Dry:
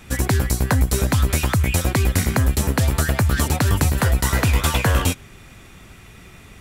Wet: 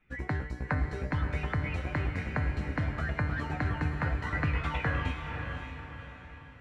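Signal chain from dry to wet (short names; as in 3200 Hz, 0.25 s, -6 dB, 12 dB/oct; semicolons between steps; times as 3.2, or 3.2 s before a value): per-bin expansion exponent 1.5; synth low-pass 2000 Hz, resonance Q 1.8; resonator 150 Hz, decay 0.65 s, harmonics all, mix 80%; diffused feedback echo 0.544 s, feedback 45%, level -6 dB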